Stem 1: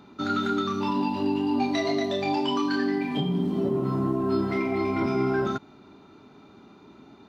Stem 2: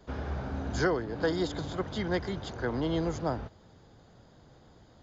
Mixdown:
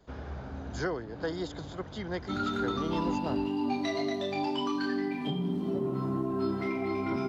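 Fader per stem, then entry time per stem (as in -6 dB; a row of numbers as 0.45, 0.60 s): -5.5, -5.0 dB; 2.10, 0.00 s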